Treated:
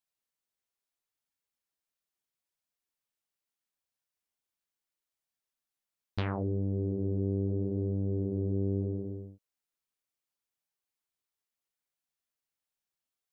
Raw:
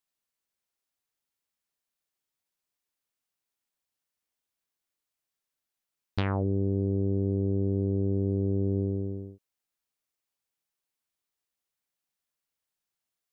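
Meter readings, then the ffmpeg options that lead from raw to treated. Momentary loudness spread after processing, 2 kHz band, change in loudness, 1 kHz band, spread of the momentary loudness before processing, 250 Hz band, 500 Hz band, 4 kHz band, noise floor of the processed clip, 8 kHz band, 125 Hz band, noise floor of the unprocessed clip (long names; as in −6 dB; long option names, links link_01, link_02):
9 LU, −4.0 dB, −4.0 dB, −4.0 dB, 8 LU, −4.0 dB, −4.0 dB, −4.0 dB, below −85 dBFS, can't be measured, −4.0 dB, below −85 dBFS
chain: -af "flanger=delay=1.2:depth=9.1:regen=-54:speed=0.75:shape=sinusoidal"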